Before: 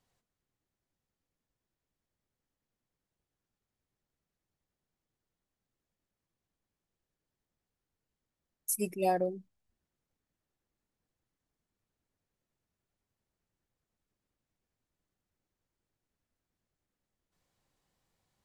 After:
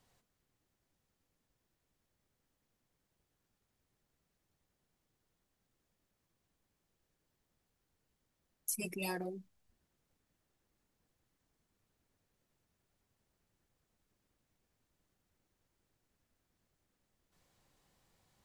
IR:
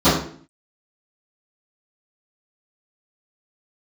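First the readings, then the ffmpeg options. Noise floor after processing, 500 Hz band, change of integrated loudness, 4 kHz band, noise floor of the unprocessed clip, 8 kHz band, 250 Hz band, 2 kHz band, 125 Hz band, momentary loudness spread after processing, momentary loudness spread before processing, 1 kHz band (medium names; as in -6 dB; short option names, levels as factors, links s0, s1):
-84 dBFS, -11.5 dB, -7.0 dB, +2.5 dB, under -85 dBFS, -4.5 dB, -6.0 dB, +1.5 dB, -4.5 dB, 7 LU, 11 LU, -14.0 dB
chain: -filter_complex "[0:a]afftfilt=real='re*lt(hypot(re,im),0.2)':imag='im*lt(hypot(re,im),0.2)':win_size=1024:overlap=0.75,acrossover=split=860|4800[s0][s1][s2];[s0]acompressor=threshold=0.00447:ratio=4[s3];[s1]acompressor=threshold=0.00398:ratio=4[s4];[s2]acompressor=threshold=0.00562:ratio=4[s5];[s3][s4][s5]amix=inputs=3:normalize=0,volume=2"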